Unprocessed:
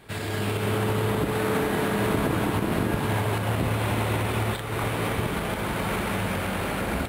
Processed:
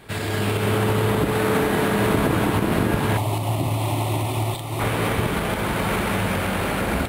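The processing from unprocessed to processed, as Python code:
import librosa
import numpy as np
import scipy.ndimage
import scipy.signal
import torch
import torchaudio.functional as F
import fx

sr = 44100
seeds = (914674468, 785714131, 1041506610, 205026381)

y = fx.fixed_phaser(x, sr, hz=310.0, stages=8, at=(3.17, 4.8))
y = y * librosa.db_to_amplitude(4.5)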